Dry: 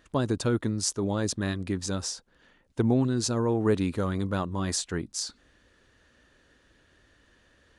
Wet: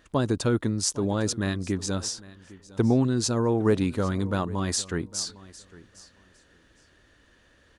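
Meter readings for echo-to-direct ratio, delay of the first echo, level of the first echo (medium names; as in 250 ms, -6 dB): -20.0 dB, 806 ms, -20.0 dB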